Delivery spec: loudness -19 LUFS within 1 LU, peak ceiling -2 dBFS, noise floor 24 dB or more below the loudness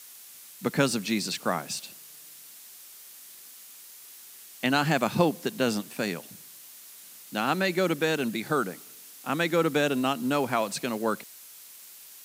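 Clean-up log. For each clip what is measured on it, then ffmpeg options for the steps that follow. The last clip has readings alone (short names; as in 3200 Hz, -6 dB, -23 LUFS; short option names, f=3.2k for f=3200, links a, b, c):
noise floor -48 dBFS; noise floor target -52 dBFS; loudness -27.5 LUFS; peak -8.5 dBFS; loudness target -19.0 LUFS
-> -af "afftdn=nr=6:nf=-48"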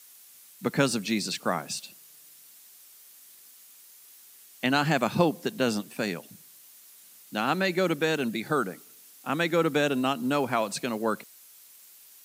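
noise floor -53 dBFS; loudness -27.5 LUFS; peak -8.5 dBFS; loudness target -19.0 LUFS
-> -af "volume=8.5dB,alimiter=limit=-2dB:level=0:latency=1"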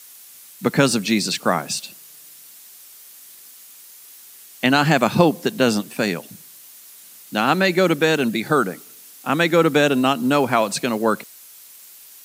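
loudness -19.5 LUFS; peak -2.0 dBFS; noise floor -44 dBFS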